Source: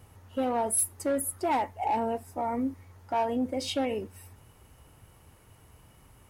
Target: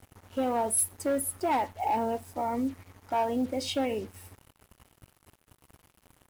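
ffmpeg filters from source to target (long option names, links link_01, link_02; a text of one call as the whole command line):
ffmpeg -i in.wav -af "acrusher=bits=7:mix=0:aa=0.5" out.wav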